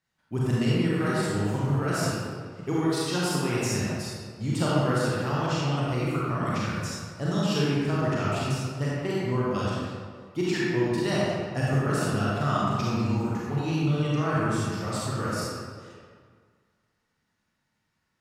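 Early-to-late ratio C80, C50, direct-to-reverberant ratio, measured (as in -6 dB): -2.5 dB, -5.0 dB, -7.5 dB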